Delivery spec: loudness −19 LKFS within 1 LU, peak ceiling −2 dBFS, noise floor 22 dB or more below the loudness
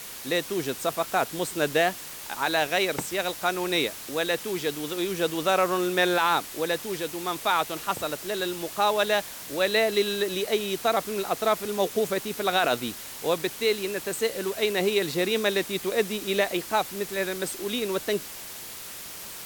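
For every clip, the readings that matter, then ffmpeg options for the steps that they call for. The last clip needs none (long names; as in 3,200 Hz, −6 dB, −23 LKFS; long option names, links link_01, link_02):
background noise floor −40 dBFS; target noise floor −49 dBFS; integrated loudness −26.5 LKFS; sample peak −10.5 dBFS; target loudness −19.0 LKFS
→ -af "afftdn=noise_reduction=9:noise_floor=-40"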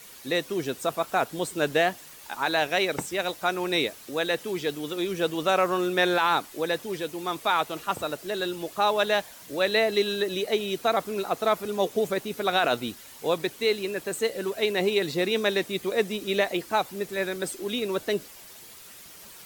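background noise floor −47 dBFS; target noise floor −49 dBFS
→ -af "afftdn=noise_reduction=6:noise_floor=-47"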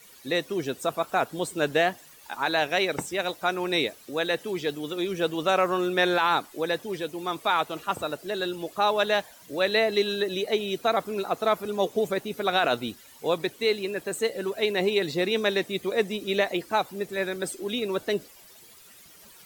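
background noise floor −51 dBFS; integrated loudness −27.0 LKFS; sample peak −11.0 dBFS; target loudness −19.0 LKFS
→ -af "volume=8dB"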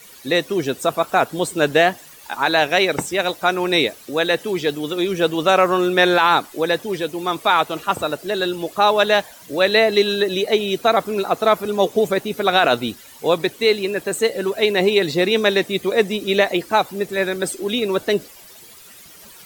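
integrated loudness −19.0 LKFS; sample peak −3.0 dBFS; background noise floor −43 dBFS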